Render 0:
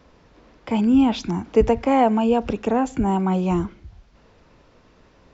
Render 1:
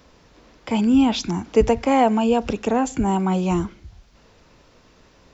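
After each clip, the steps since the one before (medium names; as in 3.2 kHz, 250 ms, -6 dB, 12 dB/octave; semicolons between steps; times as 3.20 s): treble shelf 4 kHz +11 dB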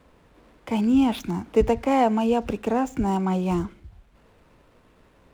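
median filter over 9 samples; trim -3 dB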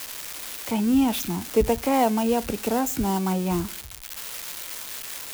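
zero-crossing glitches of -19.5 dBFS; trim -1 dB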